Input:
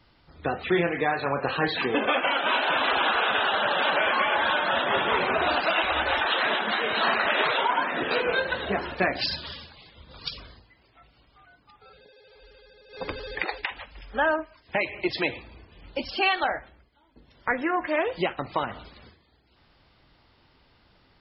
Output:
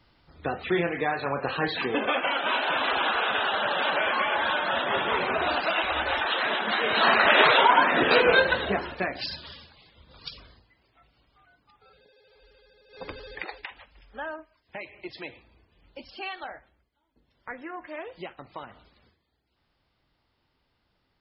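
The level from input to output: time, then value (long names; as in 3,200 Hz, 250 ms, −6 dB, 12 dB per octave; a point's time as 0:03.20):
0:06.51 −2 dB
0:07.37 +6 dB
0:08.42 +6 dB
0:09.07 −5.5 dB
0:13.19 −5.5 dB
0:14.33 −12.5 dB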